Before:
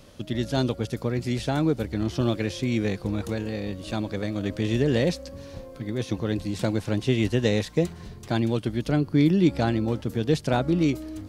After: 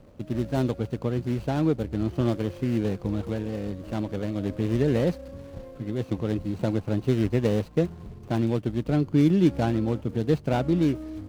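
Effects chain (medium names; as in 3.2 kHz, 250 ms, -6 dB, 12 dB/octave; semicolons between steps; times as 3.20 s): median filter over 25 samples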